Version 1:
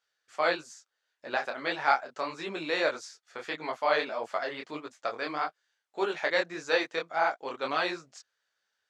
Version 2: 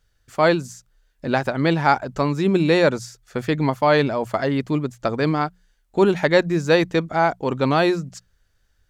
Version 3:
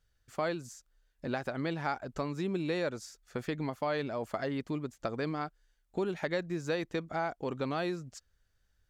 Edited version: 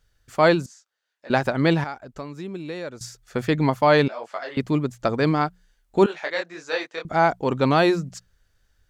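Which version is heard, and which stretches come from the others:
2
0:00.66–0:01.30: punch in from 1
0:01.84–0:03.01: punch in from 3
0:04.08–0:04.57: punch in from 1
0:06.06–0:07.05: punch in from 1

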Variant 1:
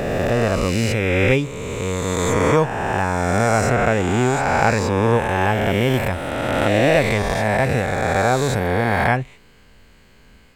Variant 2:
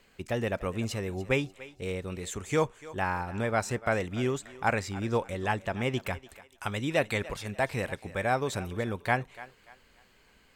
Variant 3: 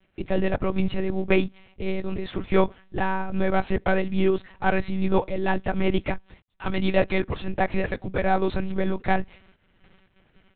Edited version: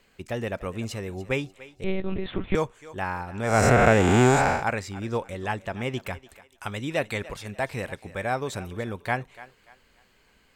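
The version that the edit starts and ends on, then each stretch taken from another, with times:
2
0:01.84–0:02.55: punch in from 3
0:03.54–0:04.53: punch in from 1, crossfade 0.24 s

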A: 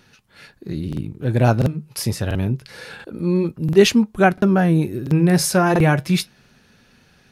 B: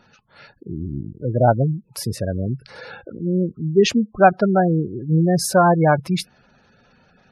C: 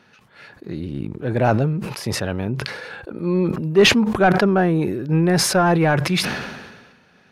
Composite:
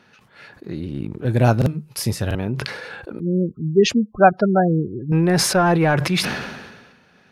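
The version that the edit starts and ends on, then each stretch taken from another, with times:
C
0:01.25–0:02.35: punch in from A
0:03.20–0:05.12: punch in from B

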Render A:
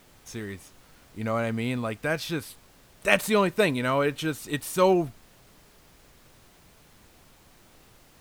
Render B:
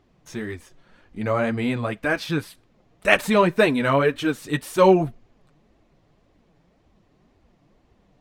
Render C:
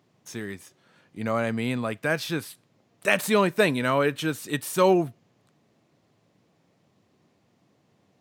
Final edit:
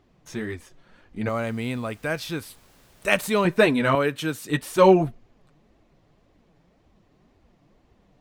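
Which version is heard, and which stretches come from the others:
B
0:01.29–0:03.45: punch in from A
0:03.95–0:04.49: punch in from C

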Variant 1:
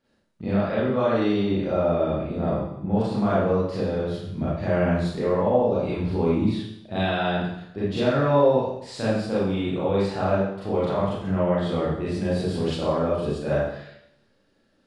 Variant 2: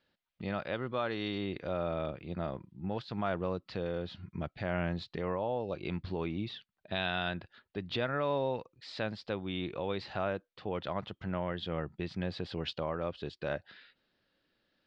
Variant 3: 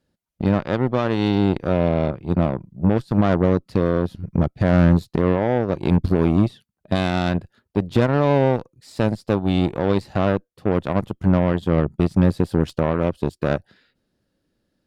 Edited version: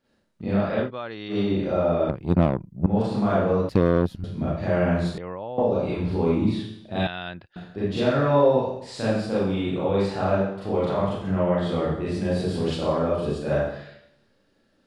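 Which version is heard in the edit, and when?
1
0:00.86–0:01.33: punch in from 2, crossfade 0.10 s
0:02.09–0:02.86: punch in from 3
0:03.69–0:04.24: punch in from 3
0:05.18–0:05.58: punch in from 2
0:07.07–0:07.56: punch in from 2

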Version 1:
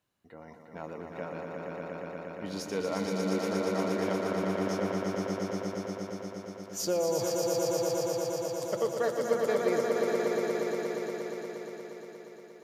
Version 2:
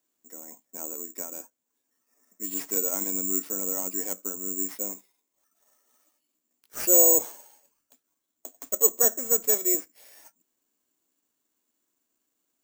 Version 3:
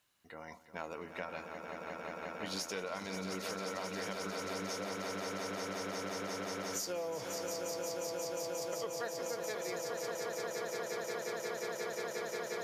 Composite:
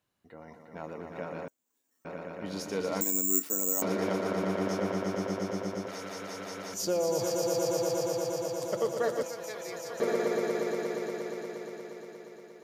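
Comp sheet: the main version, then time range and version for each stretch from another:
1
0:01.48–0:02.05: punch in from 2
0:03.01–0:03.82: punch in from 2
0:05.88–0:06.74: punch in from 3
0:09.23–0:10.00: punch in from 3

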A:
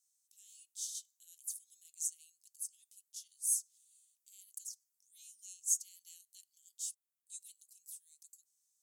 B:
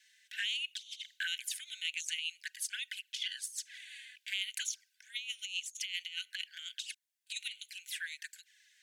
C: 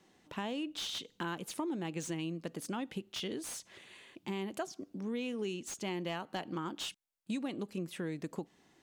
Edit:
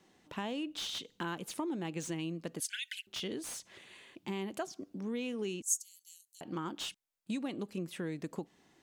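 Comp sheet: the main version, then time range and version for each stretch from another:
C
0:02.60–0:03.07: punch in from B
0:05.62–0:06.41: punch in from A

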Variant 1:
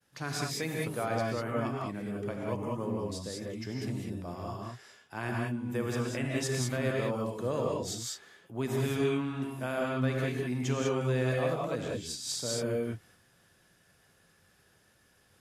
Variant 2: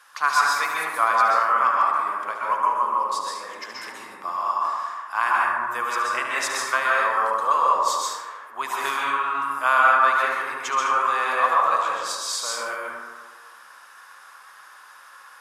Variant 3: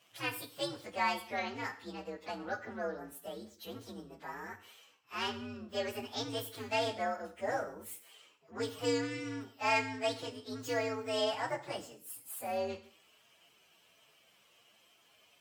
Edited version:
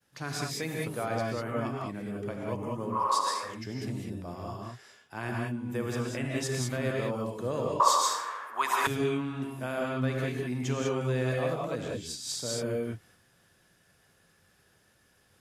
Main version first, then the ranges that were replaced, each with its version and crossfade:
1
0:03.00–0:03.51: punch in from 2, crossfade 0.24 s
0:07.80–0:08.87: punch in from 2
not used: 3

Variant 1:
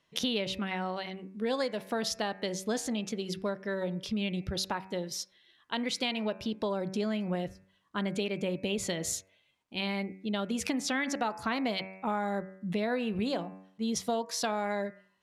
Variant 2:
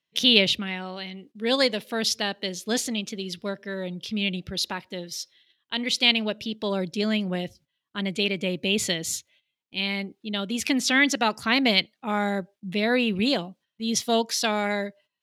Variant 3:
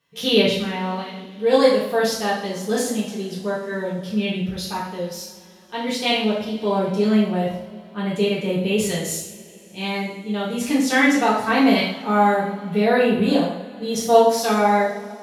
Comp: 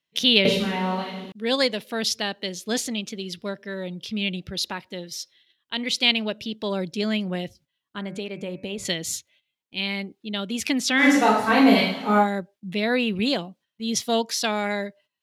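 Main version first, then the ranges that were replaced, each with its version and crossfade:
2
0:00.45–0:01.32: punch in from 3
0:07.98–0:08.85: punch in from 1
0:11.02–0:12.23: punch in from 3, crossfade 0.10 s

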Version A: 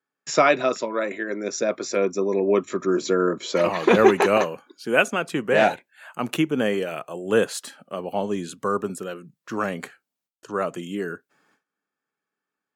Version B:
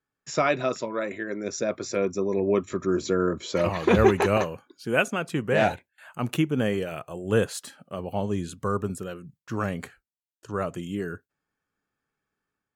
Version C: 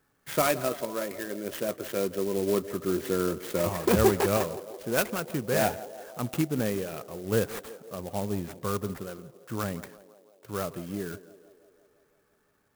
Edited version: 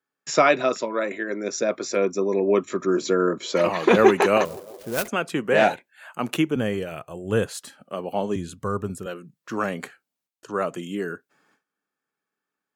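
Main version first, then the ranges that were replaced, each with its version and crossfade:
A
0:04.45–0:05.08: punch in from C
0:06.56–0:07.81: punch in from B
0:08.36–0:09.06: punch in from B

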